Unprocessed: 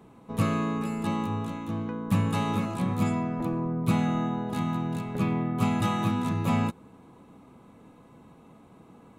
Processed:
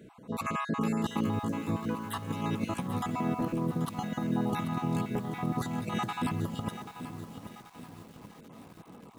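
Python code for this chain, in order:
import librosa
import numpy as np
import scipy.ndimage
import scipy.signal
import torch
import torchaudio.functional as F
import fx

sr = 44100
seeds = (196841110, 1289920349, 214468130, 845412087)

y = fx.spec_dropout(x, sr, seeds[0], share_pct=30)
y = fx.over_compress(y, sr, threshold_db=-30.0, ratio=-0.5)
y = fx.highpass(y, sr, hz=71.0, slope=6)
y = fx.echo_crushed(y, sr, ms=785, feedback_pct=55, bits=8, wet_db=-10)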